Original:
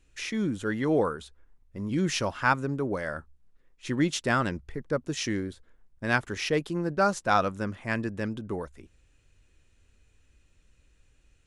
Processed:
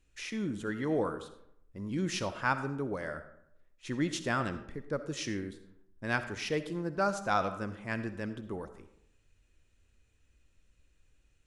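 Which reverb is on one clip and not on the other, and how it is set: algorithmic reverb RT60 0.76 s, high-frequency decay 0.55×, pre-delay 25 ms, DRR 10.5 dB; trim -6 dB

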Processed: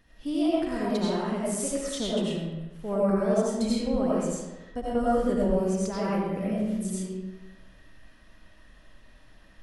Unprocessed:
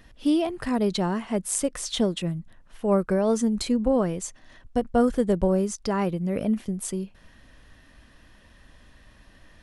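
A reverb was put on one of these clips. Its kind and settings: algorithmic reverb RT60 1.1 s, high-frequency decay 0.7×, pre-delay 50 ms, DRR -7.5 dB; trim -10 dB

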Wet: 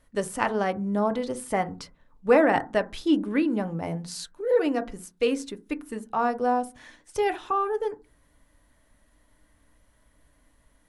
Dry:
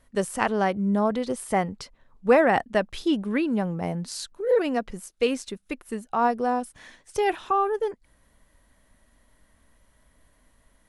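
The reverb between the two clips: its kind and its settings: FDN reverb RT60 0.3 s, low-frequency decay 1.5×, high-frequency decay 0.3×, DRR 8.5 dB; trim -2 dB

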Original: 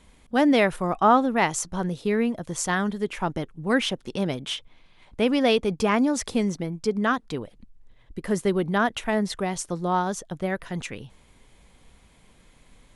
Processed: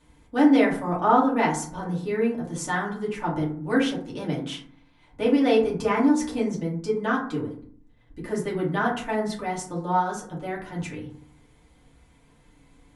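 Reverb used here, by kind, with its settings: FDN reverb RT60 0.54 s, low-frequency decay 1.4×, high-frequency decay 0.4×, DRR -6 dB; trim -9 dB

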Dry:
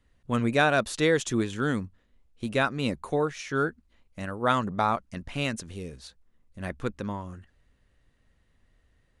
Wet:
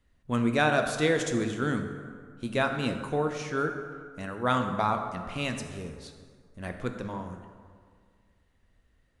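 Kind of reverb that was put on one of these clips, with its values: plate-style reverb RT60 1.9 s, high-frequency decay 0.55×, DRR 5 dB; trim -2.5 dB

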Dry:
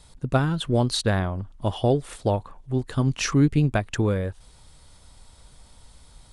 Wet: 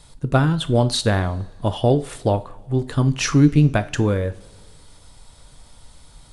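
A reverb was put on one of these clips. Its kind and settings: two-slope reverb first 0.33 s, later 2.1 s, from -21 dB, DRR 10.5 dB; trim +3.5 dB

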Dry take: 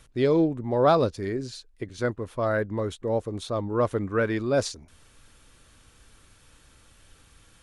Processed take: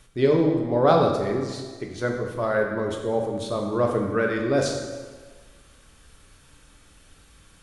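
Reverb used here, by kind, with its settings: plate-style reverb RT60 1.5 s, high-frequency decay 0.8×, DRR 1 dB

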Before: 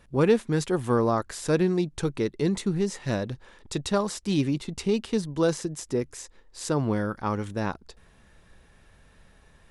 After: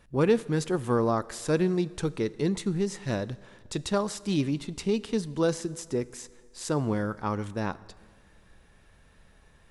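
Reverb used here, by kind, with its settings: plate-style reverb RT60 1.8 s, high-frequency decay 0.85×, DRR 18 dB; trim -2 dB

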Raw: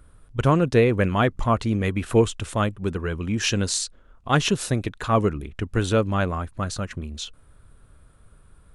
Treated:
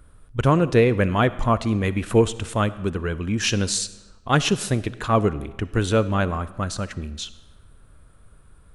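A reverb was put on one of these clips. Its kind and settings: algorithmic reverb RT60 1.1 s, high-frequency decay 0.85×, pre-delay 20 ms, DRR 16 dB; trim +1 dB

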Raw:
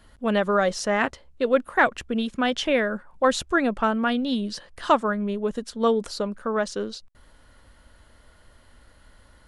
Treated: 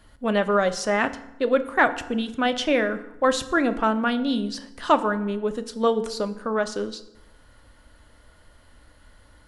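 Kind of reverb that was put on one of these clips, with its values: FDN reverb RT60 0.89 s, low-frequency decay 1.2×, high-frequency decay 0.7×, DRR 10 dB

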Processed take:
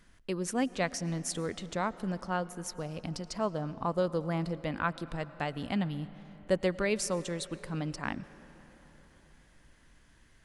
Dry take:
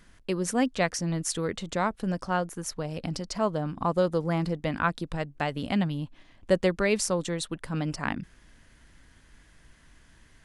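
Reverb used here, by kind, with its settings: algorithmic reverb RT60 4.6 s, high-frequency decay 0.55×, pre-delay 70 ms, DRR 16.5 dB; trim -5 dB

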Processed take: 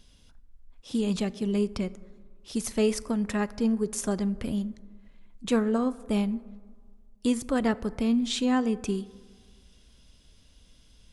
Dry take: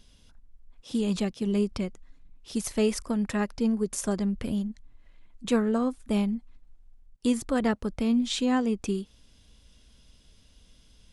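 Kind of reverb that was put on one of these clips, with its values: plate-style reverb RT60 1.7 s, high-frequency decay 0.35×, DRR 17 dB

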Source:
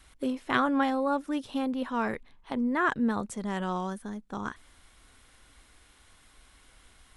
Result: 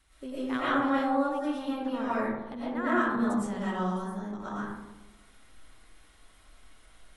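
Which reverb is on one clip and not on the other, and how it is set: algorithmic reverb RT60 1.1 s, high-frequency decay 0.35×, pre-delay 75 ms, DRR -10 dB; trim -10.5 dB

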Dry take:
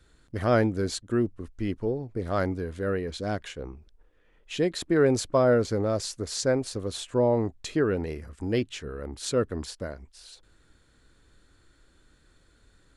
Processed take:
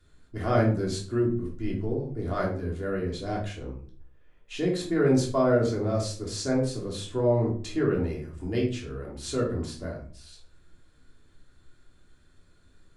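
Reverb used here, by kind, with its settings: simulated room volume 400 m³, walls furnished, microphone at 3.2 m; trim -7 dB

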